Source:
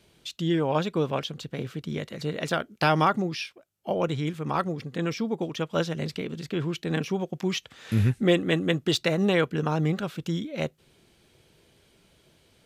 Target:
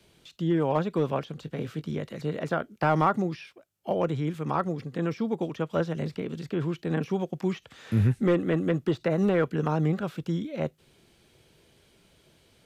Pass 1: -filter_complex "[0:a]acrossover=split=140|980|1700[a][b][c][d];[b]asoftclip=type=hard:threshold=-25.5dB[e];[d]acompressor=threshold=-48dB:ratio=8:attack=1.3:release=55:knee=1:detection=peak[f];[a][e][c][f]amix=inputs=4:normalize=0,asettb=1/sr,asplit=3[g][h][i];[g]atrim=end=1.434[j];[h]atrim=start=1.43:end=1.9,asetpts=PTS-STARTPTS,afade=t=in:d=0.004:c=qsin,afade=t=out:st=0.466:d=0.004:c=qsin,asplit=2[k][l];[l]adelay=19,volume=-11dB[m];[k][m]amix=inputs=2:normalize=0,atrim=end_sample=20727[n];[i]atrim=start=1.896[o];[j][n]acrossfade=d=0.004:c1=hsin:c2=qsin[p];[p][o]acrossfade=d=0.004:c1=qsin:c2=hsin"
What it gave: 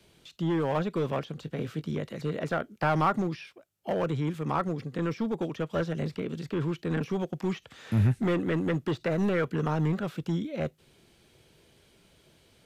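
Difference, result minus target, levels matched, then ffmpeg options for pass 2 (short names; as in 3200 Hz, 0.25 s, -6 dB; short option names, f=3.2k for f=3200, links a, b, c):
hard clip: distortion +10 dB
-filter_complex "[0:a]acrossover=split=140|980|1700[a][b][c][d];[b]asoftclip=type=hard:threshold=-18dB[e];[d]acompressor=threshold=-48dB:ratio=8:attack=1.3:release=55:knee=1:detection=peak[f];[a][e][c][f]amix=inputs=4:normalize=0,asettb=1/sr,asplit=3[g][h][i];[g]atrim=end=1.434[j];[h]atrim=start=1.43:end=1.9,asetpts=PTS-STARTPTS,afade=t=in:d=0.004:c=qsin,afade=t=out:st=0.466:d=0.004:c=qsin,asplit=2[k][l];[l]adelay=19,volume=-11dB[m];[k][m]amix=inputs=2:normalize=0,atrim=end_sample=20727[n];[i]atrim=start=1.896[o];[j][n]acrossfade=d=0.004:c1=hsin:c2=qsin[p];[p][o]acrossfade=d=0.004:c1=qsin:c2=hsin"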